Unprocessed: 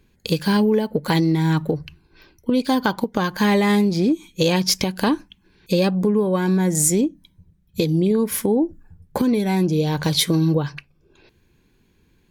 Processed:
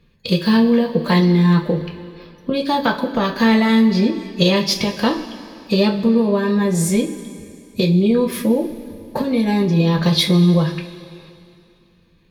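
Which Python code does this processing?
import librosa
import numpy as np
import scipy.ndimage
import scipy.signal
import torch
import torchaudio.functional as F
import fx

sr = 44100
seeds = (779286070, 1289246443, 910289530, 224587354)

y = fx.high_shelf_res(x, sr, hz=5500.0, db=-7.0, q=1.5)
y = fx.pitch_keep_formants(y, sr, semitones=1.5)
y = fx.rev_double_slope(y, sr, seeds[0], early_s=0.23, late_s=2.6, knee_db=-18, drr_db=1.0)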